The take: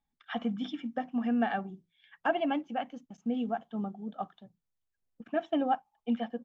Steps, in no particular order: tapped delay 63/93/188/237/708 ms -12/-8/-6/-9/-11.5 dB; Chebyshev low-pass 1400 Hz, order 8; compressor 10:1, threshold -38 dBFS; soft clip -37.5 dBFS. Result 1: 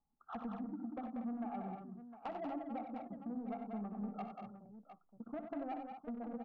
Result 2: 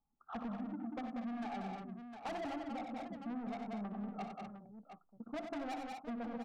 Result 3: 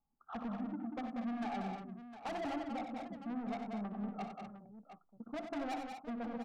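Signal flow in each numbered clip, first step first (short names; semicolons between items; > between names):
Chebyshev low-pass > compressor > soft clip > tapped delay; Chebyshev low-pass > soft clip > tapped delay > compressor; Chebyshev low-pass > soft clip > compressor > tapped delay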